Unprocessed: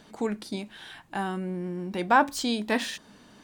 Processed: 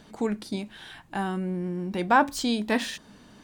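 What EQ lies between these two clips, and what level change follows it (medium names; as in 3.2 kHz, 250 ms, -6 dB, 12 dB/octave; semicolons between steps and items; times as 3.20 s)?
bass shelf 170 Hz +6.5 dB; 0.0 dB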